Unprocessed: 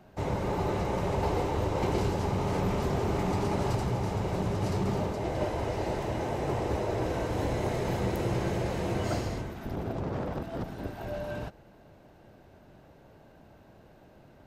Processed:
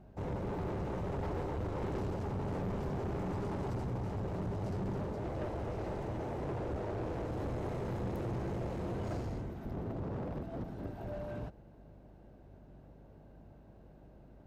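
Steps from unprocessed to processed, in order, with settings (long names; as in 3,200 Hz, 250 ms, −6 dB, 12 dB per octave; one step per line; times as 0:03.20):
tilt shelving filter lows +6 dB
asymmetric clip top −29.5 dBFS
mains hum 50 Hz, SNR 23 dB
soft clipping −23 dBFS, distortion −15 dB
0:06.45–0:07.25: highs frequency-modulated by the lows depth 0.33 ms
level −7.5 dB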